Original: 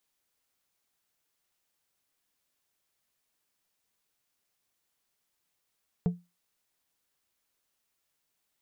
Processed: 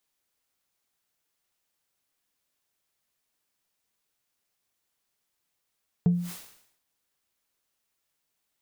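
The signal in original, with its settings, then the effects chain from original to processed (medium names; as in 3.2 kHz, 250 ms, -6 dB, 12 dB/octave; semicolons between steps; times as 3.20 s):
glass hit plate, lowest mode 175 Hz, decay 0.24 s, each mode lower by 10 dB, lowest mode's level -19.5 dB
dynamic bell 140 Hz, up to +7 dB, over -43 dBFS, Q 0.74; decay stretcher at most 82 dB/s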